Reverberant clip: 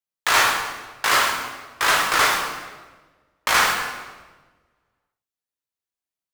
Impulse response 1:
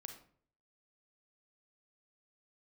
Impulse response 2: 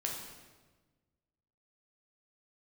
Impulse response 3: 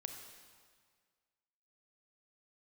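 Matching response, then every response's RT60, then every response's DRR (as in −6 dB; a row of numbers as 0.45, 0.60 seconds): 2; 0.55, 1.3, 1.8 seconds; 5.0, −1.0, 4.5 decibels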